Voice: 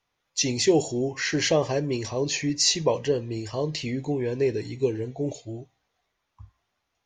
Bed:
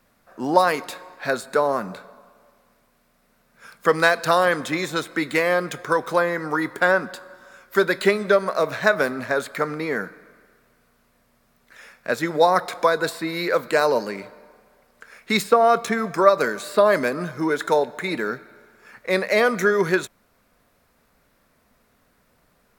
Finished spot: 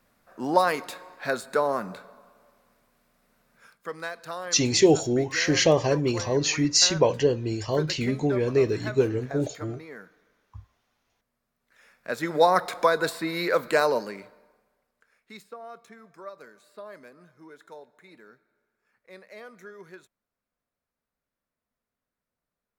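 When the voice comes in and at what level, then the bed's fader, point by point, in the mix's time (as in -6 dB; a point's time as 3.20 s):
4.15 s, +2.5 dB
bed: 3.54 s -4 dB
3.84 s -17.5 dB
11.56 s -17.5 dB
12.37 s -2.5 dB
13.79 s -2.5 dB
15.46 s -26 dB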